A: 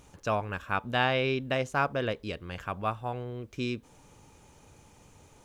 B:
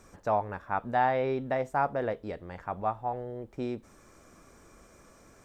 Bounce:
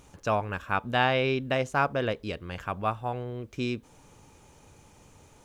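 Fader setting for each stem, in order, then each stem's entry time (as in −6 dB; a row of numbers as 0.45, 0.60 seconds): +1.0, −14.0 decibels; 0.00, 0.00 seconds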